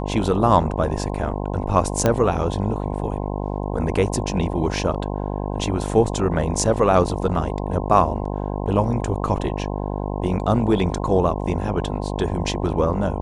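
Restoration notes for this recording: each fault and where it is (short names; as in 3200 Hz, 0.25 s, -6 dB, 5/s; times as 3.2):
buzz 50 Hz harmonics 21 -26 dBFS
2.06 pop -5 dBFS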